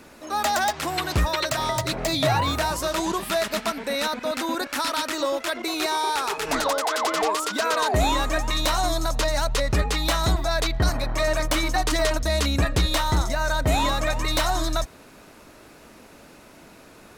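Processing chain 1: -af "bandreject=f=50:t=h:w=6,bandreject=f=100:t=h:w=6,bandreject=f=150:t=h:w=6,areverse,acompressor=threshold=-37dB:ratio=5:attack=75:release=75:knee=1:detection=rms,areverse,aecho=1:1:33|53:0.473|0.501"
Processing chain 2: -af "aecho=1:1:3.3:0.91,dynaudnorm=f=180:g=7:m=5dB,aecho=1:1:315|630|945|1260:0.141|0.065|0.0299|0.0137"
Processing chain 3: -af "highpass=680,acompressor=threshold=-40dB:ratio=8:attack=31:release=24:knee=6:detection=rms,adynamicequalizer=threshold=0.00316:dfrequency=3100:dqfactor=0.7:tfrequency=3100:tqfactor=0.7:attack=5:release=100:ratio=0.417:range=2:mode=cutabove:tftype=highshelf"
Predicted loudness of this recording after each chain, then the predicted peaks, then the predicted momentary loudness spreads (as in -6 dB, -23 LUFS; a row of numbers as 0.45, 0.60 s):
-33.0, -16.0, -38.0 LUFS; -20.5, -3.5, -21.5 dBFS; 14, 4, 13 LU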